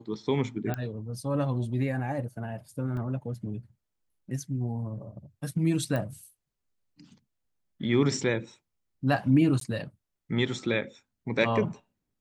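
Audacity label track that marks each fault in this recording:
0.740000	0.740000	pop -18 dBFS
2.970000	2.970000	dropout 2 ms
5.960000	5.960000	pop -19 dBFS
9.600000	9.610000	dropout 13 ms

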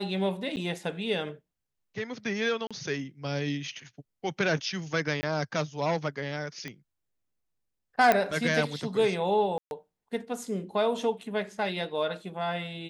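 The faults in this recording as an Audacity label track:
0.560000	0.570000	dropout 9.3 ms
2.670000	2.710000	dropout 36 ms
5.210000	5.230000	dropout 20 ms
6.680000	6.680000	pop -23 dBFS
8.120000	8.120000	pop -9 dBFS
9.580000	9.710000	dropout 131 ms

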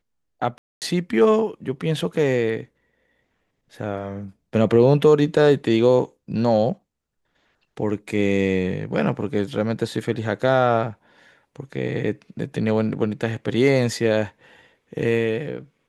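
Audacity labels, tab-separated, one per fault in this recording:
0.580000	0.820000	dropout 238 ms

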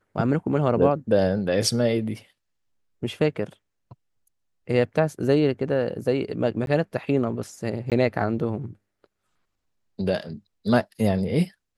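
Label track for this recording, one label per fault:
6.660000	6.670000	dropout 12 ms
7.900000	7.920000	dropout 17 ms

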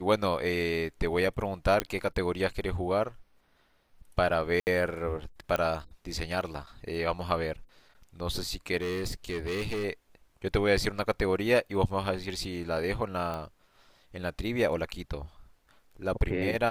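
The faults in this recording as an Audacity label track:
1.800000	1.800000	pop -11 dBFS
4.600000	4.670000	dropout 69 ms
5.560000	5.560000	pop -15 dBFS
8.770000	9.850000	clipped -28 dBFS
13.340000	13.340000	pop -23 dBFS

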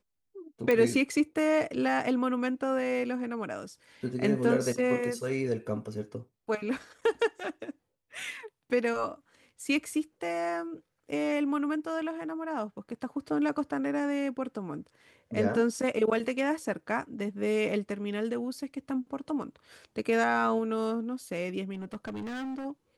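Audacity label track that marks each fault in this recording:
0.710000	0.710000	pop -15 dBFS
21.730000	22.660000	clipped -33.5 dBFS

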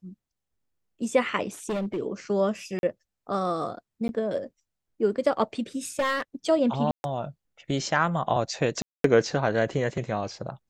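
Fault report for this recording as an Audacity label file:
1.690000	1.980000	clipped -25 dBFS
2.790000	2.830000	dropout 41 ms
4.080000	4.090000	dropout 11 ms
5.990000	6.220000	clipped -20.5 dBFS
6.910000	7.040000	dropout 131 ms
8.820000	9.040000	dropout 223 ms

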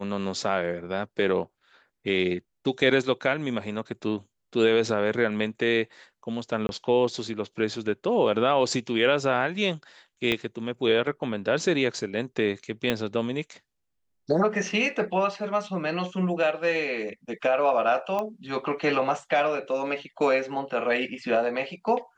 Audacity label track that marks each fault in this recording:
6.670000	6.690000	dropout 21 ms
10.320000	10.320000	pop -12 dBFS
12.900000	12.900000	pop -10 dBFS
18.190000	18.190000	pop -17 dBFS

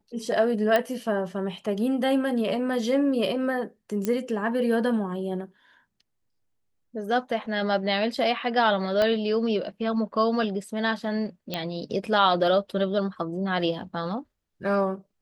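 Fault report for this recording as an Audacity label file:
0.760000	0.760000	pop -10 dBFS
4.050000	4.050000	pop -13 dBFS
9.020000	9.020000	pop -12 dBFS
11.540000	11.540000	pop -14 dBFS

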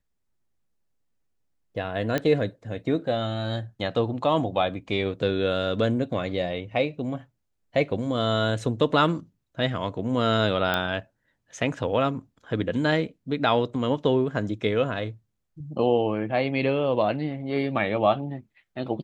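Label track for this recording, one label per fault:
2.180000	2.180000	pop -12 dBFS
10.740000	10.740000	pop -11 dBFS

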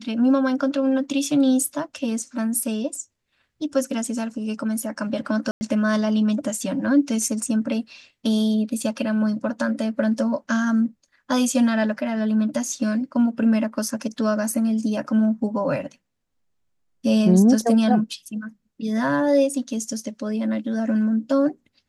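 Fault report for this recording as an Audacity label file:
5.510000	5.610000	dropout 100 ms

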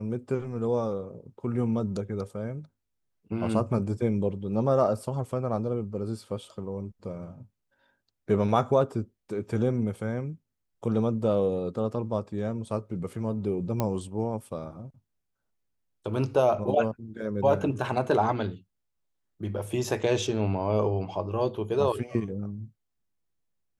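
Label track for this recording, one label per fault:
13.800000	13.800000	pop -13 dBFS

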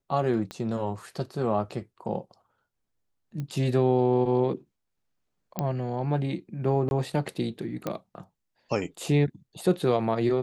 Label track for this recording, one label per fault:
0.510000	0.510000	pop -21 dBFS
3.400000	3.400000	pop -23 dBFS
5.590000	5.590000	pop -14 dBFS
6.890000	6.910000	dropout 21 ms
7.870000	7.870000	pop -16 dBFS

